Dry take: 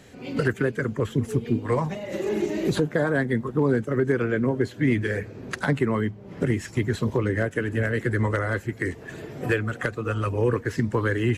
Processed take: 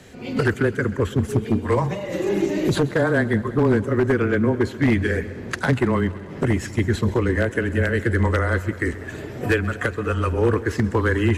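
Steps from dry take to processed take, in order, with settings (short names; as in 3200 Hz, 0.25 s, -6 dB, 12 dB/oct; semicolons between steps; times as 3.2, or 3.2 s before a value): frequency shift -15 Hz; wavefolder -14.5 dBFS; on a send: multi-head echo 66 ms, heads second and third, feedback 62%, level -19.5 dB; on the sum: attack slew limiter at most 560 dB/s; gain +4 dB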